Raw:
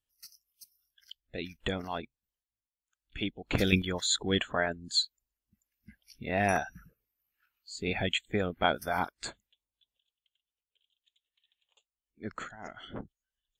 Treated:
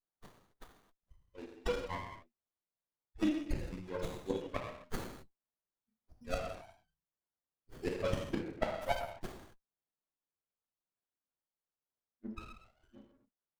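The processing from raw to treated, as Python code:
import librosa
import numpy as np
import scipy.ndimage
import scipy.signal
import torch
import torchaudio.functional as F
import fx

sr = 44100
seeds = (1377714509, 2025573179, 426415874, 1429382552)

y = fx.bin_expand(x, sr, power=3.0)
y = fx.gate_flip(y, sr, shuts_db=-30.0, range_db=-28)
y = fx.rev_gated(y, sr, seeds[0], gate_ms=290, shape='falling', drr_db=-1.0)
y = fx.running_max(y, sr, window=17)
y = y * 10.0 ** (10.0 / 20.0)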